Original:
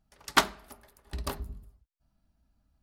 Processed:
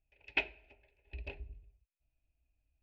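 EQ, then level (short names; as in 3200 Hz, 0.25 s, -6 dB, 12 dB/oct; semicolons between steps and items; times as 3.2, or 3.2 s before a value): ladder low-pass 2600 Hz, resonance 90%; low shelf 500 Hz +6.5 dB; fixed phaser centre 490 Hz, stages 4; 0.0 dB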